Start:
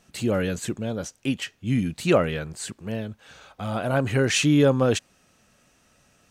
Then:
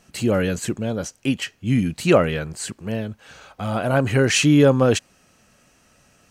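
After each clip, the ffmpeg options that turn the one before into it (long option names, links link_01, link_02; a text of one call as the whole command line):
ffmpeg -i in.wav -af "bandreject=frequency=3600:width=13,volume=4dB" out.wav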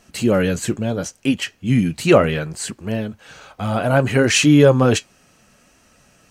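ffmpeg -i in.wav -af "flanger=delay=2.8:depth=6:regen=-61:speed=0.69:shape=triangular,volume=7dB" out.wav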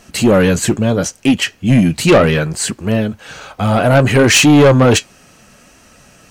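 ffmpeg -i in.wav -af "asoftclip=type=tanh:threshold=-13dB,volume=9dB" out.wav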